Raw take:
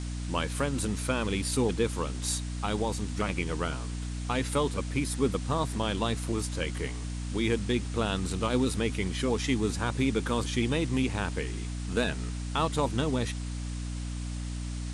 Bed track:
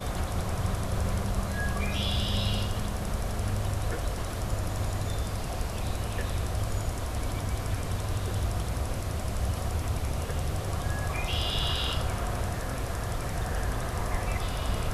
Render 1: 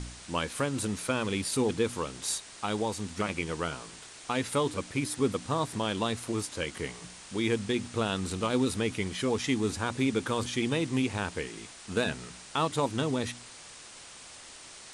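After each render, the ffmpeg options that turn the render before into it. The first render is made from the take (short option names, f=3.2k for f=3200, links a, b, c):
-af "bandreject=f=60:t=h:w=4,bandreject=f=120:t=h:w=4,bandreject=f=180:t=h:w=4,bandreject=f=240:t=h:w=4,bandreject=f=300:t=h:w=4"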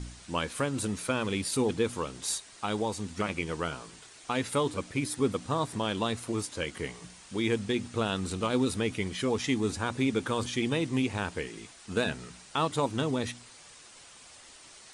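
-af "afftdn=nr=6:nf=-49"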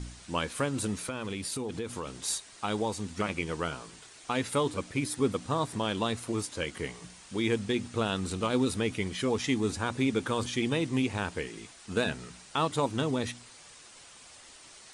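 -filter_complex "[0:a]asettb=1/sr,asplit=3[a][b][c];[a]atrim=end=0.964[d];[b]atrim=start=0.96:end=2.21,asetpts=PTS-STARTPTS,afade=t=in:d=0.004:c=qsin,afade=t=out:st=1.246:d=0.004:c=qsin,acompressor=threshold=-31dB:ratio=6:attack=3.2:release=140:knee=1:detection=peak[e];[c]atrim=start=2.206[f];[d][e]acrossfade=d=0.004:c1=hsin:c2=qsin[g];[g][f]acrossfade=d=0.004:c1=qsin:c2=hsin"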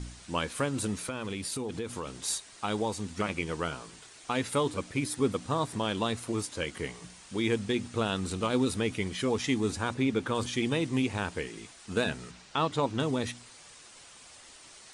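-filter_complex "[0:a]asettb=1/sr,asplit=3[a][b][c];[a]atrim=end=9.944[d];[b]atrim=start=9.94:end=10.35,asetpts=PTS-STARTPTS,afade=t=in:d=0.004:c=qsin,afade=t=out:st=0.406:d=0.004:c=qsin,highshelf=f=6k:g=-9[e];[c]atrim=start=10.346[f];[d][e]acrossfade=d=0.004:c1=hsin:c2=qsin[g];[g][f]acrossfade=d=0.004:c1=qsin:c2=hsin,asettb=1/sr,asplit=3[h][i][j];[h]atrim=end=12.314[k];[i]atrim=start=12.31:end=13,asetpts=PTS-STARTPTS,afade=t=in:d=0.004:c=qsin,afade=t=out:st=0.686:d=0.004:c=qsin,lowpass=6k[l];[j]atrim=start=12.996[m];[k][l]acrossfade=d=0.004:c1=hsin:c2=qsin[n];[n][m]acrossfade=d=0.004:c1=qsin:c2=hsin"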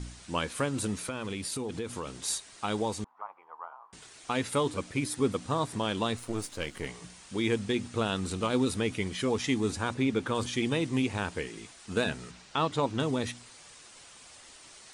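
-filter_complex "[0:a]asettb=1/sr,asplit=3[a][b][c];[a]atrim=end=3.044[d];[b]atrim=start=3.04:end=3.93,asetpts=PTS-STARTPTS,afade=t=in:d=0.004:c=qsin,afade=t=out:st=0.886:d=0.004:c=qsin,asuperpass=centerf=940:order=4:qfactor=2.6[e];[c]atrim=start=3.926[f];[d][e]acrossfade=d=0.004:c1=hsin:c2=qsin[g];[g][f]acrossfade=d=0.004:c1=qsin:c2=hsin,asettb=1/sr,asplit=3[h][i][j];[h]atrim=end=6.174[k];[i]atrim=start=6.17:end=6.87,asetpts=PTS-STARTPTS,afade=t=in:d=0.004:c=qsin,afade=t=out:st=0.696:d=0.004:c=qsin,aeval=exprs='if(lt(val(0),0),0.447*val(0),val(0))':c=same[l];[j]atrim=start=6.866[m];[k][l]acrossfade=d=0.004:c1=hsin:c2=qsin[n];[n][m]acrossfade=d=0.004:c1=qsin:c2=hsin"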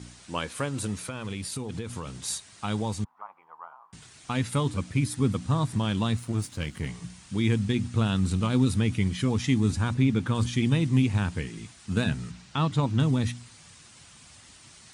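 -af "highpass=100,asubboost=boost=8.5:cutoff=150"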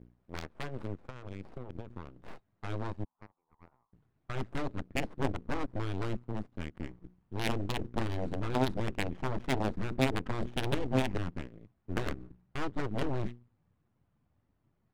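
-af "aeval=exprs='0.266*(cos(1*acos(clip(val(0)/0.266,-1,1)))-cos(1*PI/2))+0.119*(cos(3*acos(clip(val(0)/0.266,-1,1)))-cos(3*PI/2))+0.00944*(cos(5*acos(clip(val(0)/0.266,-1,1)))-cos(5*PI/2))+0.0266*(cos(8*acos(clip(val(0)/0.266,-1,1)))-cos(8*PI/2))':c=same,adynamicsmooth=sensitivity=5:basefreq=730"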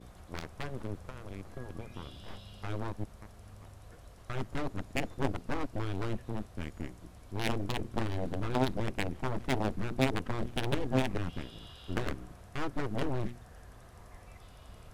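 -filter_complex "[1:a]volume=-22dB[a];[0:a][a]amix=inputs=2:normalize=0"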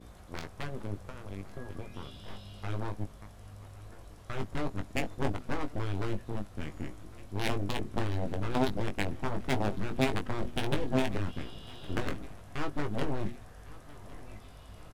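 -filter_complex "[0:a]asplit=2[a][b];[b]adelay=20,volume=-7dB[c];[a][c]amix=inputs=2:normalize=0,aecho=1:1:1106|2212|3318|4424:0.0944|0.051|0.0275|0.0149"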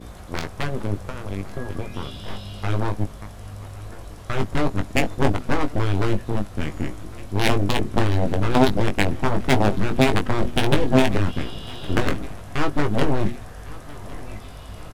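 -af "volume=12dB,alimiter=limit=-1dB:level=0:latency=1"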